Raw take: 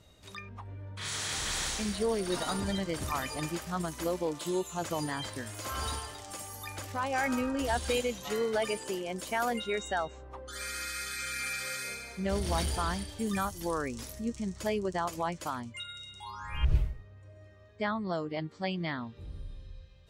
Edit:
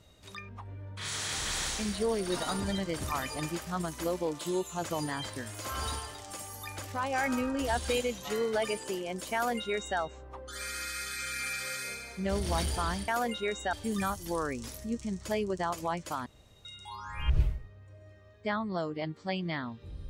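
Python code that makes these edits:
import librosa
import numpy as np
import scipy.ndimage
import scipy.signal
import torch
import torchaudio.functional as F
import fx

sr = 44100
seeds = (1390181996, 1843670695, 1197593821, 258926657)

y = fx.edit(x, sr, fx.duplicate(start_s=9.34, length_s=0.65, to_s=13.08),
    fx.room_tone_fill(start_s=15.61, length_s=0.39), tone=tone)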